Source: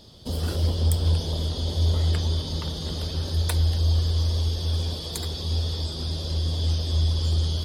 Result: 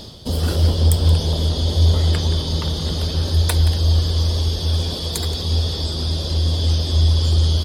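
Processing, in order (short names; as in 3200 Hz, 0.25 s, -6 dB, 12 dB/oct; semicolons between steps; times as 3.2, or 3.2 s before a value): outdoor echo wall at 30 m, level -12 dB; reverse; upward compressor, threshold -29 dBFS; reverse; gain +7 dB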